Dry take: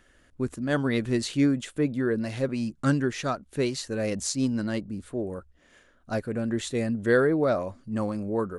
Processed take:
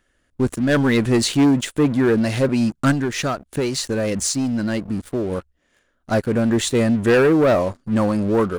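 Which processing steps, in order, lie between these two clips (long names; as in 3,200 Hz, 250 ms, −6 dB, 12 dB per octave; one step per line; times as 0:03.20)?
high-shelf EQ 9,300 Hz +3.5 dB
leveller curve on the samples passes 3
0:02.91–0:05.32: downward compressor, threshold −19 dBFS, peak gain reduction 6 dB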